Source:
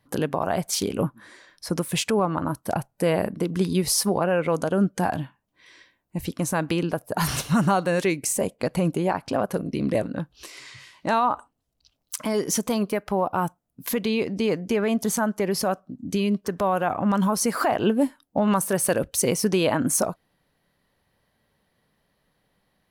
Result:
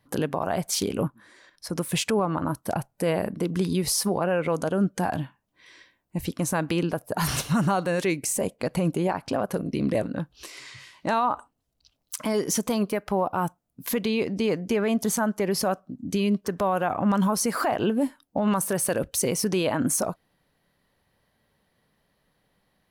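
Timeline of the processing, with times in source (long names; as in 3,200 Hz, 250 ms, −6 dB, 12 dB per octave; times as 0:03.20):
0:01.07–0:01.78: output level in coarse steps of 9 dB
whole clip: brickwall limiter −15 dBFS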